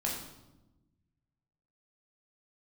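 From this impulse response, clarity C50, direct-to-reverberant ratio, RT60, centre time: 3.5 dB, -3.5 dB, 1.0 s, 43 ms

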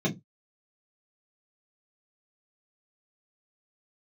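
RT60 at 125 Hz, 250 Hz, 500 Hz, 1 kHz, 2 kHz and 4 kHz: 0.25 s, 0.25 s, 0.20 s, 0.15 s, 0.15 s, 0.15 s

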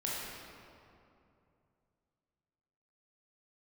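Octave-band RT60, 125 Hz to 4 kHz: 3.5 s, 3.0 s, 2.8 s, 2.5 s, 2.0 s, 1.5 s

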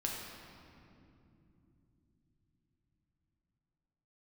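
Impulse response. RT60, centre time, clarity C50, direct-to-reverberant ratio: 2.9 s, 100 ms, 1.0 dB, -2.0 dB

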